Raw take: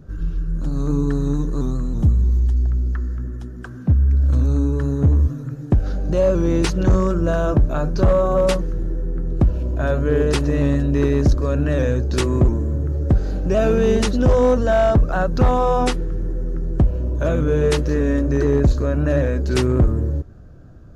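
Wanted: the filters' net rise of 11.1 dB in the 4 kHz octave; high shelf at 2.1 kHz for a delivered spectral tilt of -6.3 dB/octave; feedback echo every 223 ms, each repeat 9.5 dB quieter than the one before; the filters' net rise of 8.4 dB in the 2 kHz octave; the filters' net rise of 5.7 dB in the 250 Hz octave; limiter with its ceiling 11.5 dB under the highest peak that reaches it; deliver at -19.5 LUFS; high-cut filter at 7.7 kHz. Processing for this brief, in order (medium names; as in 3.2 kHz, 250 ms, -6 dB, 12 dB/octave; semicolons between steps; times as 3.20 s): low-pass 7.7 kHz; peaking EQ 250 Hz +7 dB; peaking EQ 2 kHz +6.5 dB; treble shelf 2.1 kHz +5.5 dB; peaking EQ 4 kHz +7 dB; peak limiter -12.5 dBFS; feedback delay 223 ms, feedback 33%, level -9.5 dB; trim +1.5 dB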